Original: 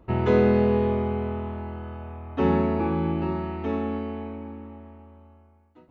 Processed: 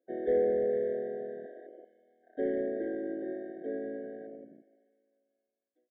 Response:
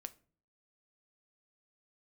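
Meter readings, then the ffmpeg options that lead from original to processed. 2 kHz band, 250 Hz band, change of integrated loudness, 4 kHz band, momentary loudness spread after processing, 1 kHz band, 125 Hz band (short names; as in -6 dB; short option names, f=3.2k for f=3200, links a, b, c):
-12.5 dB, -13.5 dB, -8.0 dB, under -20 dB, 19 LU, -18.0 dB, -29.0 dB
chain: -filter_complex "[0:a]highpass=f=370:w=0.5412,highpass=f=370:w=1.3066,equalizer=f=670:t=q:w=4:g=-6,equalizer=f=960:t=q:w=4:g=5,equalizer=f=2k:t=q:w=4:g=-7,lowpass=f=3.7k:w=0.5412,lowpass=f=3.7k:w=1.3066,aecho=1:1:3.7:0.36,afwtdn=0.0224,asoftclip=type=tanh:threshold=-16dB,highshelf=f=2.9k:g=-6,asplit=5[a][b][c][d][e];[b]adelay=150,afreqshift=55,volume=-21dB[f];[c]adelay=300,afreqshift=110,volume=-27.2dB[g];[d]adelay=450,afreqshift=165,volume=-33.4dB[h];[e]adelay=600,afreqshift=220,volume=-39.6dB[i];[a][f][g][h][i]amix=inputs=5:normalize=0,afftfilt=real='re*eq(mod(floor(b*sr/1024/760),2),0)':imag='im*eq(mod(floor(b*sr/1024/760),2),0)':win_size=1024:overlap=0.75,volume=-2dB"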